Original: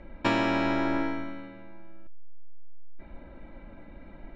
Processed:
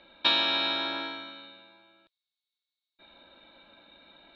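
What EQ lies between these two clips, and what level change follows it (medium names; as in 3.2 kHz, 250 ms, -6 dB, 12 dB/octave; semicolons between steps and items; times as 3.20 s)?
high-pass 1.2 kHz 6 dB/octave; resonant low-pass 3.8 kHz, resonance Q 14; band-stop 2 kHz, Q 7; 0.0 dB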